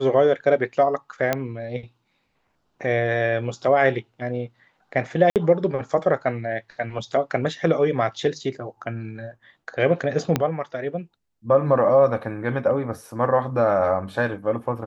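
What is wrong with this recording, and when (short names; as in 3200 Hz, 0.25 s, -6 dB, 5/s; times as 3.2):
1.33 pop -7 dBFS
5.3–5.36 gap 58 ms
10.36 pop -6 dBFS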